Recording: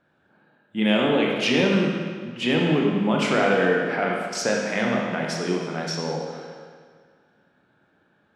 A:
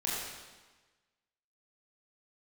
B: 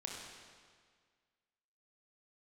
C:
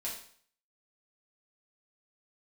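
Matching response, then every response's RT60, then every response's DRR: B; 1.3, 1.8, 0.55 seconds; −7.0, −1.5, −5.5 decibels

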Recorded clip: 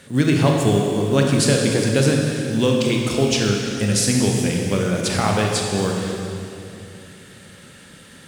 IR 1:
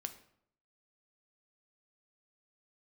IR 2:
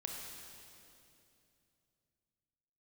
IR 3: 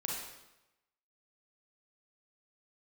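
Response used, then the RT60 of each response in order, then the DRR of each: 2; 0.70, 2.7, 0.95 seconds; 7.5, 0.0, −3.0 decibels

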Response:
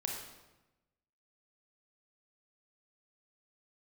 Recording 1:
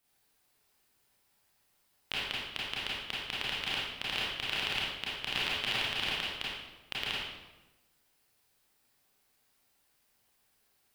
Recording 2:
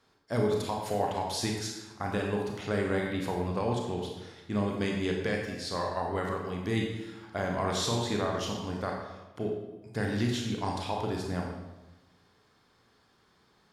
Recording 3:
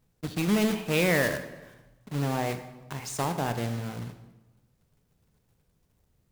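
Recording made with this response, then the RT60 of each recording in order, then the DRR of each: 2; 1.0, 1.0, 1.0 seconds; −8.0, 0.0, 8.0 decibels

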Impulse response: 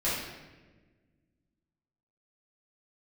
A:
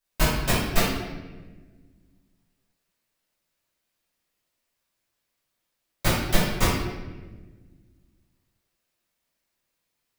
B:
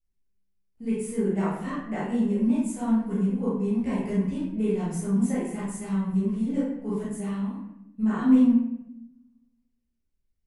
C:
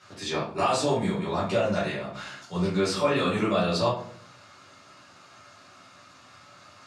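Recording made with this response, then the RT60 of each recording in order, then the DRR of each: A; 1.3, 0.85, 0.55 seconds; −11.5, −9.5, −8.5 decibels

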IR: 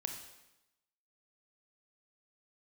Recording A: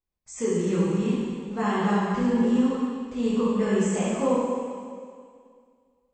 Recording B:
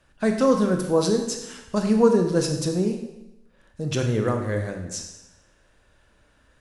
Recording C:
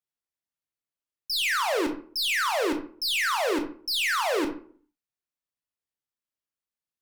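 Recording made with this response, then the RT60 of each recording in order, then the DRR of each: B; 2.1, 0.95, 0.50 seconds; −9.5, 4.0, 4.5 decibels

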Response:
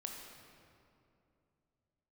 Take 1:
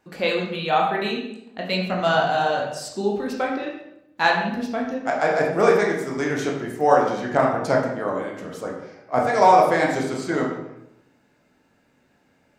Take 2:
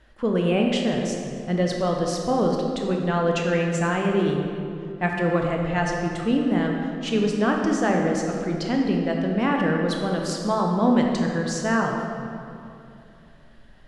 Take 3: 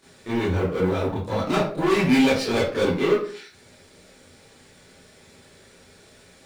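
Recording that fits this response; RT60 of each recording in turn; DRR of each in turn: 2; 0.80, 2.7, 0.45 seconds; −2.0, 0.5, −12.0 decibels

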